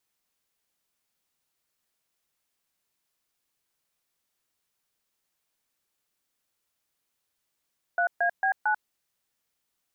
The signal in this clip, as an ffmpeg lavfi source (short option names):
-f lavfi -i "aevalsrc='0.0631*clip(min(mod(t,0.225),0.091-mod(t,0.225))/0.002,0,1)*(eq(floor(t/0.225),0)*(sin(2*PI*697*mod(t,0.225))+sin(2*PI*1477*mod(t,0.225)))+eq(floor(t/0.225),1)*(sin(2*PI*697*mod(t,0.225))+sin(2*PI*1633*mod(t,0.225)))+eq(floor(t/0.225),2)*(sin(2*PI*770*mod(t,0.225))+sin(2*PI*1633*mod(t,0.225)))+eq(floor(t/0.225),3)*(sin(2*PI*852*mod(t,0.225))+sin(2*PI*1477*mod(t,0.225))))':d=0.9:s=44100"